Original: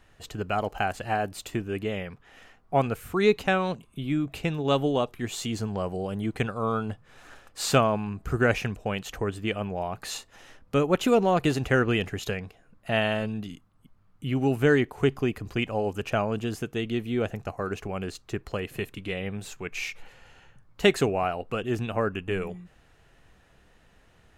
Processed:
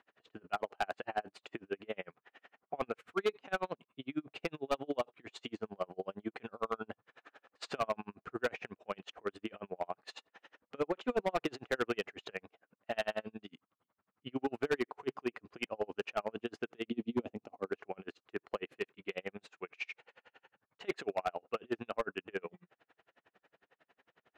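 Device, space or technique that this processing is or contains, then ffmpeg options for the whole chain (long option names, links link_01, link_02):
helicopter radio: -filter_complex "[0:a]asettb=1/sr,asplit=3[link_01][link_02][link_03];[link_01]atrim=end=16.904[link_04];[link_02]atrim=start=16.9:end=17.69,asetpts=PTS-STARTPTS,afade=type=in:duration=0.004:curve=qsin,afade=type=out:start_time=0.786:duration=0.004:curve=qsin,equalizer=frequency=100:width_type=o:width=0.67:gain=4,equalizer=frequency=250:width_type=o:width=0.67:gain=11,equalizer=frequency=1600:width_type=o:width=0.67:gain=-12[link_05];[link_03]atrim=start=17.686[link_06];[link_04][link_05]acrossfade=duration=0.004:curve1=hsin:curve2=qsin[link_07];[link_07][link_06]acrossfade=duration=0.004:curve1=qsin:curve2=hsin,highpass=340,lowpass=2900,aeval=exprs='val(0)*pow(10,-39*(0.5-0.5*cos(2*PI*11*n/s))/20)':channel_layout=same,asoftclip=type=hard:threshold=-25.5dB"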